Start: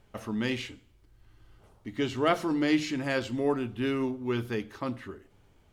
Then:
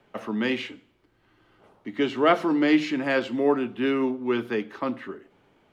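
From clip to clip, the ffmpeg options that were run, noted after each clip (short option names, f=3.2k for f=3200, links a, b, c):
-filter_complex "[0:a]acrossover=split=120|390|2700[a][b][c][d];[a]acompressor=threshold=-55dB:ratio=6[e];[e][b][c][d]amix=inputs=4:normalize=0,acrossover=split=160 3700:gain=0.0891 1 0.224[f][g][h];[f][g][h]amix=inputs=3:normalize=0,volume=6dB"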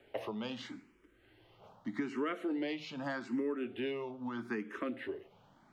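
-filter_complex "[0:a]acompressor=threshold=-32dB:ratio=6,asplit=2[a][b];[b]afreqshift=0.81[c];[a][c]amix=inputs=2:normalize=1,volume=1dB"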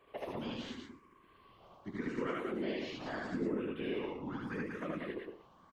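-af "aeval=exprs='val(0)+0.000708*sin(2*PI*1100*n/s)':c=same,afftfilt=real='hypot(re,im)*cos(2*PI*random(0))':imag='hypot(re,im)*sin(2*PI*random(1))':win_size=512:overlap=0.75,aecho=1:1:75.8|189.5:1|0.631,volume=1.5dB"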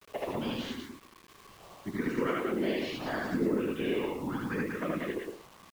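-af "acrusher=bits=9:mix=0:aa=0.000001,volume=6.5dB"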